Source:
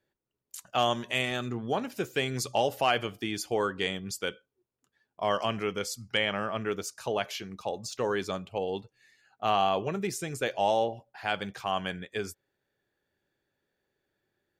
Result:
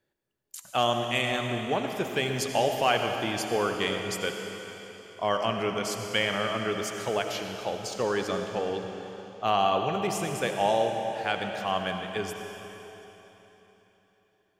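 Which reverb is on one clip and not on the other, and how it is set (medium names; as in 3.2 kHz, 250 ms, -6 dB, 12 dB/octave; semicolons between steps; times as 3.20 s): algorithmic reverb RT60 3.7 s, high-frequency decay 0.95×, pre-delay 40 ms, DRR 4 dB; trim +1 dB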